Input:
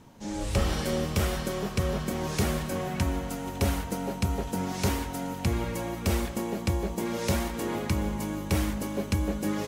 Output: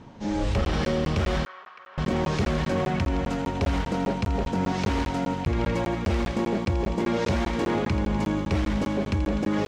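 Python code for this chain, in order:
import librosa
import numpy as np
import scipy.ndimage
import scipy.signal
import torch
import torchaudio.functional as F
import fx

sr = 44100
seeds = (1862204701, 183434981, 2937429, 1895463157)

p1 = fx.air_absorb(x, sr, metres=150.0)
p2 = fx.echo_wet_highpass(p1, sr, ms=83, feedback_pct=73, hz=1900.0, wet_db=-10.5)
p3 = fx.over_compress(p2, sr, threshold_db=-31.0, ratio=-0.5)
p4 = p2 + (p3 * 10.0 ** (-3.0 / 20.0))
p5 = fx.clip_asym(p4, sr, top_db=-20.0, bottom_db=-18.5)
p6 = fx.ladder_bandpass(p5, sr, hz=1500.0, resonance_pct=40, at=(1.45, 1.98))
p7 = fx.buffer_crackle(p6, sr, first_s=0.65, period_s=0.2, block=512, kind='zero')
y = p7 * 10.0 ** (1.5 / 20.0)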